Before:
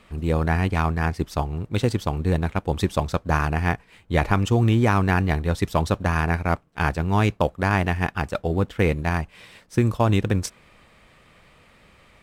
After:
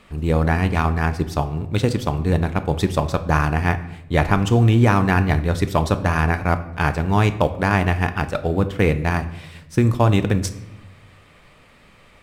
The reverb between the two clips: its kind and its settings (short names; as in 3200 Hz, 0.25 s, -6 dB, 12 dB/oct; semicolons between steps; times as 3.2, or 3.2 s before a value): shoebox room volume 260 m³, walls mixed, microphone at 0.34 m; gain +2.5 dB